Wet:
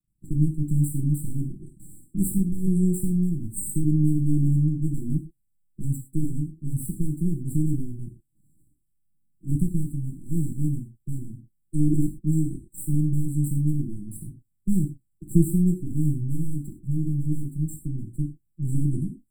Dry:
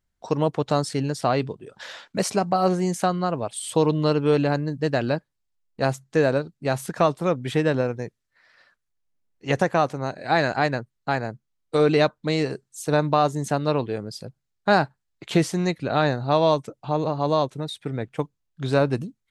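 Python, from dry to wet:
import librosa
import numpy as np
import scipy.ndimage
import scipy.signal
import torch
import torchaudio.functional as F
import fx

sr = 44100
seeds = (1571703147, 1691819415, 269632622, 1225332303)

y = np.maximum(x, 0.0)
y = fx.brickwall_bandstop(y, sr, low_hz=360.0, high_hz=7500.0)
y = fx.rev_gated(y, sr, seeds[0], gate_ms=140, shape='falling', drr_db=0.0)
y = y * 10.0 ** (4.5 / 20.0)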